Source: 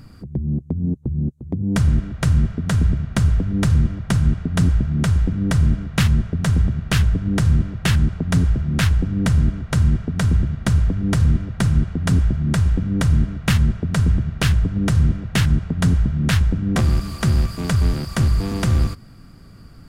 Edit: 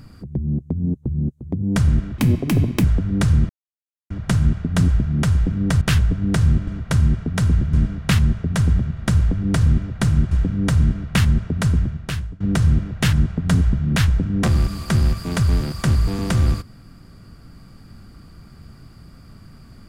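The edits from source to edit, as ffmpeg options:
ffmpeg -i in.wav -filter_complex "[0:a]asplit=10[link_01][link_02][link_03][link_04][link_05][link_06][link_07][link_08][link_09][link_10];[link_01]atrim=end=2.184[link_11];[link_02]atrim=start=2.18:end=3.26,asetpts=PTS-STARTPTS,asetrate=71883,aresample=44100[link_12];[link_03]atrim=start=3.256:end=3.91,asetpts=PTS-STARTPTS,afade=type=out:start_time=0.65:duration=0.004:curve=hsin,apad=pad_dur=0.61[link_13];[link_04]atrim=start=3.91:end=5.622,asetpts=PTS-STARTPTS,afade=type=in:duration=0.004:curve=hsin[link_14];[link_05]atrim=start=6.848:end=7.712[link_15];[link_06]atrim=start=9.488:end=10.552[link_16];[link_07]atrim=start=5.618:end=6.852[link_17];[link_08]atrim=start=10.548:end=11.902[link_18];[link_09]atrim=start=12.638:end=14.73,asetpts=PTS-STARTPTS,afade=type=out:start_time=1.332:duration=0.76:silence=0.0749894[link_19];[link_10]atrim=start=14.73,asetpts=PTS-STARTPTS,afade=type=in:duration=0.004:curve=hsin:silence=0.0749894[link_20];[link_11][link_12]acrossfade=duration=0.004:curve1=hsin:curve2=hsin[link_21];[link_13][link_14]concat=n=2:v=0:a=1[link_22];[link_21][link_22]acrossfade=duration=0.004:curve1=hsin:curve2=hsin[link_23];[link_23][link_15]acrossfade=duration=0.004:curve1=hsin:curve2=hsin[link_24];[link_24][link_16]acrossfade=duration=0.004:curve1=hsin:curve2=hsin[link_25];[link_25][link_17]acrossfade=duration=0.004:curve1=hsin:curve2=hsin[link_26];[link_26][link_18]acrossfade=duration=0.004:curve1=hsin:curve2=hsin[link_27];[link_19][link_20]concat=n=2:v=0:a=1[link_28];[link_27][link_28]acrossfade=duration=0.004:curve1=hsin:curve2=hsin" out.wav

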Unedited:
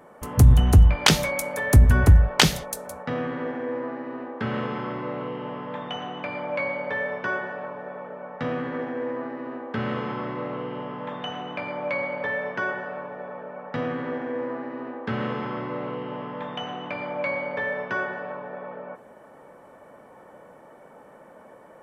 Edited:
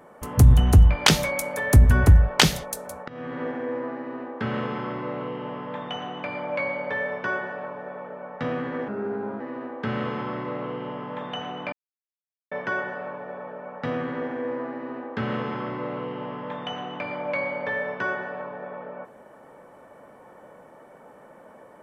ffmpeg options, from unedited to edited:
ffmpeg -i in.wav -filter_complex "[0:a]asplit=6[link_01][link_02][link_03][link_04][link_05][link_06];[link_01]atrim=end=3.08,asetpts=PTS-STARTPTS,afade=type=out:start_time=3.076:duration=0.004:curve=hsin:silence=0.0944061[link_07];[link_02]atrim=start=3.08:end=8.884,asetpts=PTS-STARTPTS,afade=type=in:duration=0.35:silence=0.0944061[link_08];[link_03]atrim=start=8.88:end=9.31,asetpts=PTS-STARTPTS,asetrate=36162,aresample=44100[link_09];[link_04]atrim=start=9.306:end=11.63,asetpts=PTS-STARTPTS,afade=type=out:start_time=2.32:duration=0.004:curve=hsin[link_10];[link_05]atrim=start=11.63:end=12.42,asetpts=PTS-STARTPTS,volume=0[link_11];[link_06]atrim=start=12.42,asetpts=PTS-STARTPTS,afade=type=in:duration=0.004:curve=hsin[link_12];[link_07][link_08]concat=n=2:v=0:a=1[link_13];[link_13][link_09]acrossfade=duration=0.004:curve1=hsin:curve2=hsin[link_14];[link_10][link_11][link_12]concat=n=3:v=0:a=1[link_15];[link_14][link_15]acrossfade=duration=0.004:curve1=hsin:curve2=hsin" out.wav

